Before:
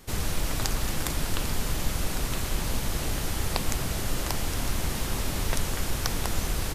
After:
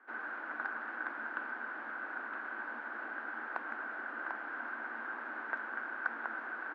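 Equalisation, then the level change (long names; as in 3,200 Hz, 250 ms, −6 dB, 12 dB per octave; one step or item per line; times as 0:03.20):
Chebyshev high-pass with heavy ripple 220 Hz, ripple 6 dB
transistor ladder low-pass 1,600 Hz, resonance 85%
low-shelf EQ 440 Hz −7 dB
+5.0 dB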